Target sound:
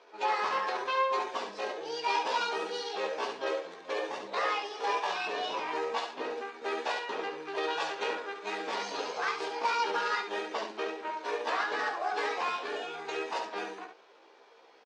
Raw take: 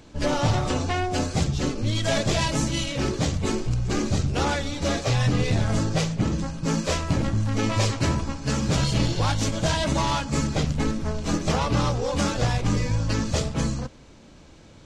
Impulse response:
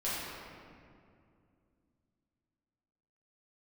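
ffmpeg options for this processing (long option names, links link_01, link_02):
-filter_complex "[0:a]asetrate=64194,aresample=44100,atempo=0.686977,highpass=frequency=420:width=0.5412,highpass=frequency=420:width=1.3066,equalizer=frequency=460:width_type=q:width=4:gain=4,equalizer=frequency=1000:width_type=q:width=4:gain=7,equalizer=frequency=1600:width_type=q:width=4:gain=4,equalizer=frequency=2600:width_type=q:width=4:gain=5,lowpass=frequency=4900:width=0.5412,lowpass=frequency=4900:width=1.3066,asplit=2[link_01][link_02];[link_02]aecho=0:1:15|70:0.562|0.473[link_03];[link_01][link_03]amix=inputs=2:normalize=0,volume=-8.5dB"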